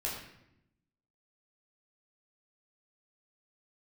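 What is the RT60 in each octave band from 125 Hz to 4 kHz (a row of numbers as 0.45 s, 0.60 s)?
1.2 s, 1.2 s, 0.85 s, 0.75 s, 0.75 s, 0.60 s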